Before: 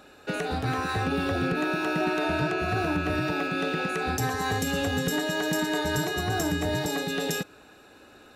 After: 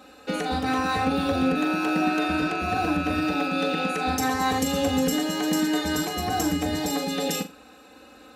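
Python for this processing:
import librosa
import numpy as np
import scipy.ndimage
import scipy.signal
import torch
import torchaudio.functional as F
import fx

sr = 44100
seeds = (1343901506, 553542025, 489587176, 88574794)

y = scipy.signal.sosfilt(scipy.signal.butter(2, 50.0, 'highpass', fs=sr, output='sos'), x)
y = fx.peak_eq(y, sr, hz=1500.0, db=-2.5, octaves=0.37)
y = y + 0.93 * np.pad(y, (int(3.9 * sr / 1000.0), 0))[:len(y)]
y = fx.room_flutter(y, sr, wall_m=7.2, rt60_s=0.24)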